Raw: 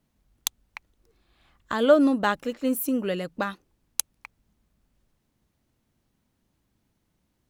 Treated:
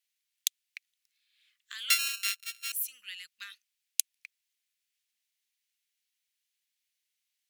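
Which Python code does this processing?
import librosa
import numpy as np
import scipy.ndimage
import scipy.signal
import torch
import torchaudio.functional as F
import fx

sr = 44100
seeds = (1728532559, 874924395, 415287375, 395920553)

y = fx.sample_sort(x, sr, block=32, at=(1.9, 2.72))
y = scipy.signal.sosfilt(scipy.signal.cheby2(4, 50, 830.0, 'highpass', fs=sr, output='sos'), y)
y = F.gain(torch.from_numpy(y), -1.5).numpy()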